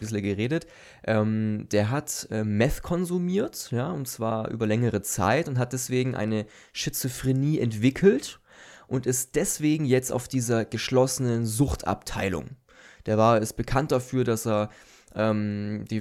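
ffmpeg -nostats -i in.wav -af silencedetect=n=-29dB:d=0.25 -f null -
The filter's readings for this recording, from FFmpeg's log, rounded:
silence_start: 0.62
silence_end: 1.08 | silence_duration: 0.46
silence_start: 6.42
silence_end: 6.77 | silence_duration: 0.35
silence_start: 8.30
silence_end: 8.91 | silence_duration: 0.61
silence_start: 12.47
silence_end: 13.08 | silence_duration: 0.60
silence_start: 14.66
silence_end: 15.17 | silence_duration: 0.51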